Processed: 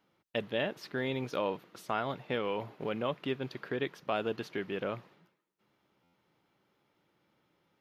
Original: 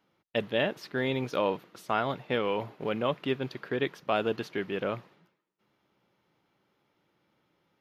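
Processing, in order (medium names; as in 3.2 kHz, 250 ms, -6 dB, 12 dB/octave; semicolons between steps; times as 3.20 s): in parallel at 0 dB: compression, threshold -35 dBFS, peak gain reduction 12 dB; on the sum: buffer glitch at 6.03 s, times 8; trim -7 dB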